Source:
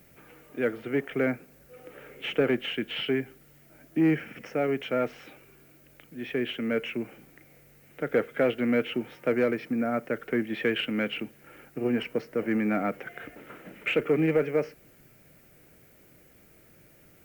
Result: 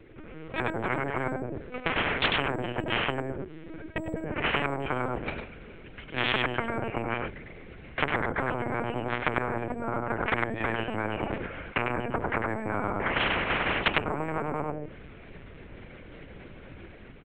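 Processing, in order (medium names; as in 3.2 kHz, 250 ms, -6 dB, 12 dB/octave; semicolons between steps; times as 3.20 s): single-diode clipper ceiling -23 dBFS; hum notches 60/120/180/240/300/360/420/480/540/600 Hz; low-pass that closes with the level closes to 330 Hz, closed at -29 dBFS; gate -47 dBFS, range -19 dB; peaking EQ 330 Hz +12.5 dB 0.79 oct, from 5.07 s 65 Hz; level rider gain up to 8 dB; peak limiter -14.5 dBFS, peak gain reduction 11.5 dB; delay 96 ms -5.5 dB; LPC vocoder at 8 kHz pitch kept; spectrum-flattening compressor 10:1; trim -1.5 dB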